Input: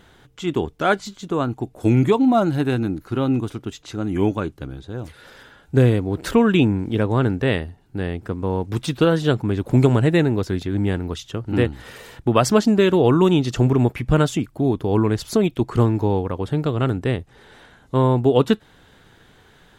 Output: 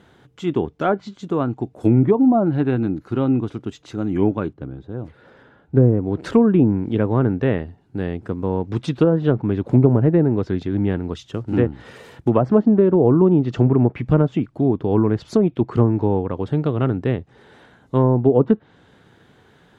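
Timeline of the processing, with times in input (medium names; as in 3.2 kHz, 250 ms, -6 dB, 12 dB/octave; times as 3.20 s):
4.53–6.03 s: low-pass 1.3 kHz 6 dB/octave
11.22–12.96 s: short-mantissa float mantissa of 4-bit
whole clip: Bessel high-pass 150 Hz, order 2; low-pass that closes with the level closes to 860 Hz, closed at -12.5 dBFS; tilt EQ -2 dB/octave; trim -1 dB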